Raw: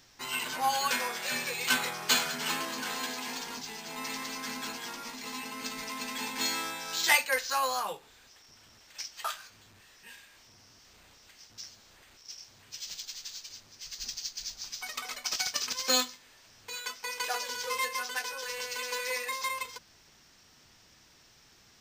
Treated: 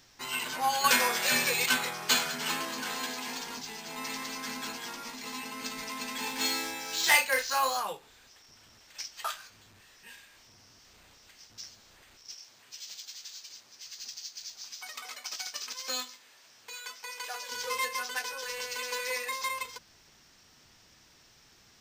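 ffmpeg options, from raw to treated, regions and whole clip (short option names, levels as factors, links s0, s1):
-filter_complex "[0:a]asettb=1/sr,asplit=3[s0][s1][s2];[s0]atrim=end=0.844[s3];[s1]atrim=start=0.84:end=1.66,asetpts=PTS-STARTPTS,afade=t=in:d=0.004:c=qsin,afade=t=out:st=0.816:d=0.004:c=qsin,highshelf=f=8800:g=4,acontrast=48[s4];[s2]atrim=start=1.656[s5];[s3][s4]acrossfade=d=0.004:c1=hsin:c2=qsin[s6];[s6][s5]acrossfade=d=0.004:c1=qsin:c2=hsin,asettb=1/sr,asplit=3[s7][s8][s9];[s7]atrim=end=6.204[s10];[s8]atrim=start=6.2:end=7.77,asetpts=PTS-STARTPTS,afade=t=in:d=0.004:c=qsin,afade=t=out:st=1.566:d=0.004:c=qsin,acrusher=bits=5:mode=log:mix=0:aa=0.000001,asplit=2[s11][s12];[s12]adelay=34,volume=0.562[s13];[s11][s13]amix=inputs=2:normalize=0,atrim=end_sample=69237[s14];[s9]atrim=start=7.766[s15];[s10][s14]acrossfade=d=0.004:c1=hsin:c2=qsin[s16];[s16][s15]acrossfade=d=0.004:c1=qsin:c2=hsin,asettb=1/sr,asplit=3[s17][s18][s19];[s17]atrim=end=12.344[s20];[s18]atrim=start=12.34:end=17.52,asetpts=PTS-STARTPTS,afade=t=in:d=0.004:c=qsin,afade=t=out:st=5.176:d=0.004:c=qsin,highpass=f=420:p=1,acompressor=threshold=0.00631:ratio=1.5:attack=3.2:release=140:knee=1:detection=peak,asplit=2[s21][s22];[s22]adelay=15,volume=0.211[s23];[s21][s23]amix=inputs=2:normalize=0,atrim=end_sample=228438[s24];[s19]atrim=start=17.516[s25];[s20][s24]acrossfade=d=0.004:c1=hsin:c2=qsin[s26];[s26][s25]acrossfade=d=0.004:c1=qsin:c2=hsin"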